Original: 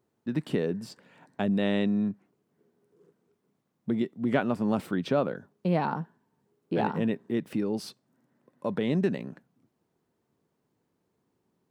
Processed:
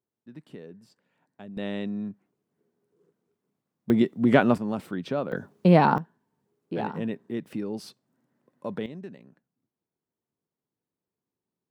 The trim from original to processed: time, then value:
-15.5 dB
from 1.57 s -5.5 dB
from 3.90 s +7 dB
from 4.58 s -3 dB
from 5.32 s +9 dB
from 5.98 s -3 dB
from 8.86 s -14.5 dB

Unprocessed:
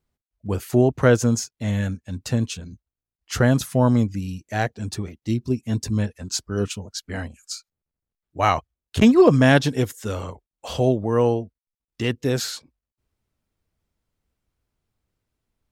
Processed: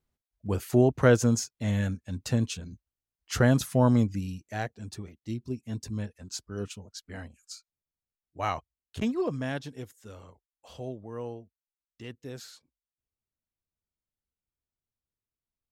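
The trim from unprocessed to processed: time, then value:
4.18 s -4 dB
4.73 s -11 dB
8.53 s -11 dB
9.60 s -18.5 dB

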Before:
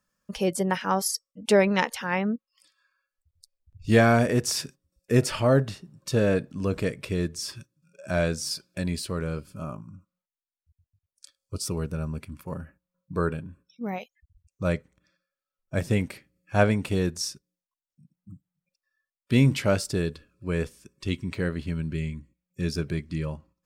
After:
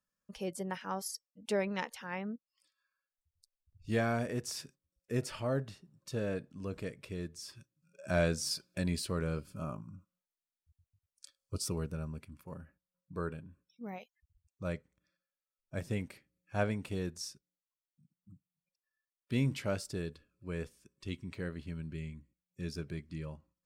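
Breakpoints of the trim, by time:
7.52 s -13 dB
8.09 s -4.5 dB
11.55 s -4.5 dB
12.33 s -11.5 dB

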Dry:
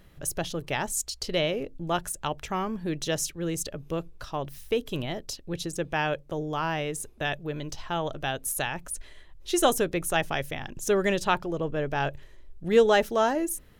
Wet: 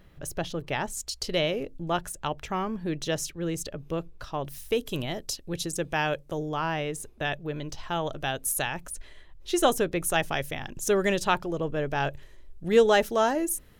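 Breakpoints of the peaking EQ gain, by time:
peaking EQ 11 kHz 1.8 oct
-7.5 dB
from 1.07 s +2 dB
from 1.84 s -4.5 dB
from 4.44 s +6 dB
from 6.49 s -3.5 dB
from 7.83 s +2.5 dB
from 8.89 s -3.5 dB
from 9.99 s +3 dB

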